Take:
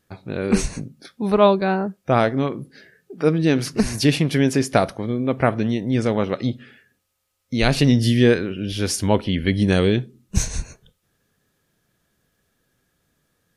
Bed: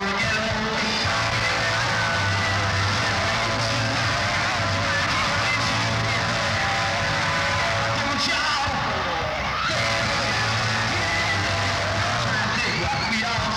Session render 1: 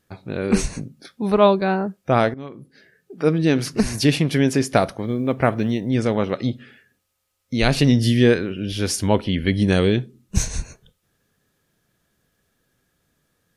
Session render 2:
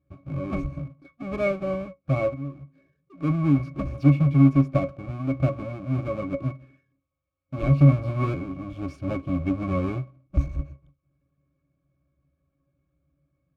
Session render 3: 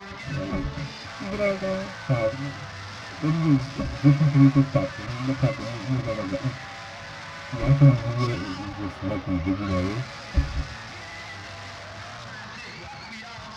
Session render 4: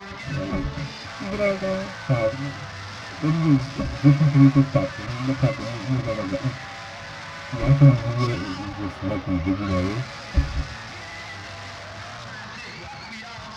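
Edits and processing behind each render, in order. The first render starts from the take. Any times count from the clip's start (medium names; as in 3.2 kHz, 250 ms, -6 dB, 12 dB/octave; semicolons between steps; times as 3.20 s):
2.34–3.32 s: fade in, from -16.5 dB; 4.69–5.87 s: short-mantissa float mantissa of 6-bit
square wave that keeps the level; pitch-class resonator C#, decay 0.13 s
add bed -15.5 dB
trim +2 dB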